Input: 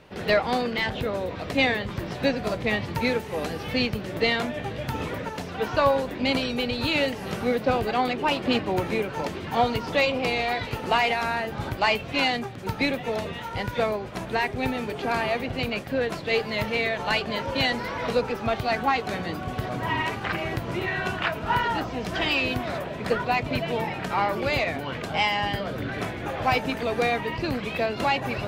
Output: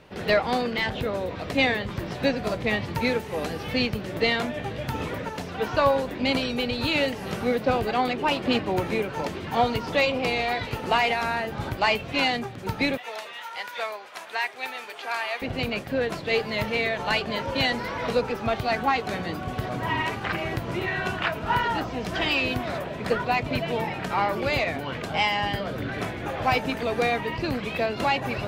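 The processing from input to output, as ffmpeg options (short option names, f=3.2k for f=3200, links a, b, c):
-filter_complex "[0:a]asettb=1/sr,asplit=3[a][b][c];[a]atrim=end=12.974[d];[b]atrim=start=12.97:end=15.42,asetpts=PTS-STARTPTS,afade=t=in:d=0.004:c=qsin,afade=t=out:st=2.446:d=0.004:c=qsin,highpass=930[e];[c]atrim=start=15.416[f];[d][e]acrossfade=d=0.004:c1=hsin:c2=qsin[g];[g][f]acrossfade=d=0.004:c1=qsin:c2=hsin"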